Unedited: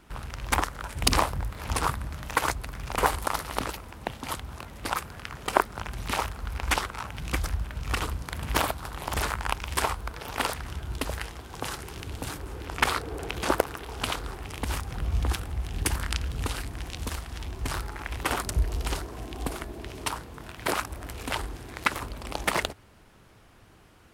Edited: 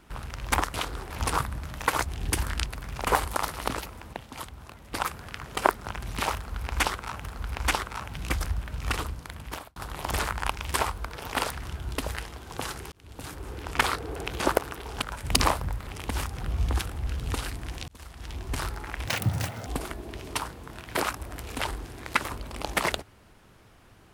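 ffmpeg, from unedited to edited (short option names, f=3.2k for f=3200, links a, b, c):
-filter_complex "[0:a]asplit=16[a][b][c][d][e][f][g][h][i][j][k][l][m][n][o][p];[a]atrim=end=0.742[q];[b]atrim=start=14.048:end=14.412[r];[c]atrim=start=1.588:end=2.572[s];[d]atrim=start=15.608:end=16.192[t];[e]atrim=start=2.568:end=4.042[u];[f]atrim=start=4.038:end=4.842,asetpts=PTS-STARTPTS,volume=-5.5dB[v];[g]atrim=start=4.838:end=7.152[w];[h]atrim=start=6.268:end=8.79,asetpts=PTS-STARTPTS,afade=t=out:st=1.662:d=0.86[x];[i]atrim=start=8.79:end=11.95,asetpts=PTS-STARTPTS,afade=t=in:d=0.004:c=hsin,afade=t=out:st=3.156:d=0.004:c=hsin[y];[j]atrim=start=11.95:end=14.052,asetpts=PTS-STARTPTS,afade=t=in:d=0.56[z];[k]atrim=start=0.738:end=1.592[aa];[l]atrim=start=14.408:end=15.612[ab];[m]atrim=start=16.188:end=17,asetpts=PTS-STARTPTS,afade=t=out:st=0.808:d=0.004:c=hsin[ac];[n]atrim=start=17:end=18.194,asetpts=PTS-STARTPTS,afade=t=in:d=0.51[ad];[o]atrim=start=18.19:end=19.37,asetpts=PTS-STARTPTS,asetrate=87759,aresample=44100[ae];[p]atrim=start=19.366[af];[q][r]acrossfade=d=0.004:c1=hsin:c2=hsin[ag];[ag][s]acrossfade=d=0.004:c1=hsin:c2=hsin[ah];[ah][t]acrossfade=d=0.004:c1=hsin:c2=hsin[ai];[ai][u]acrossfade=d=0.004:c1=hsin:c2=hsin[aj];[aj][v]acrossfade=d=0.004:c1=hsin:c2=hsin[ak];[ak][w]acrossfade=d=0.004:c1=hsin:c2=hsin[al];[x][y][z]concat=n=3:v=0:a=1[am];[al][am]acrossfade=d=0.004:c1=hsin:c2=hsin[an];[an][aa]acrossfade=d=0.004:c1=hsin:c2=hsin[ao];[ao][ab]acrossfade=d=0.004:c1=hsin:c2=hsin[ap];[ac][ad]concat=n=2:v=0:a=1[aq];[ap][aq]acrossfade=d=0.004:c1=hsin:c2=hsin[ar];[ar][ae]acrossfade=d=0.004:c1=hsin:c2=hsin[as];[as][af]acrossfade=d=0.004:c1=hsin:c2=hsin"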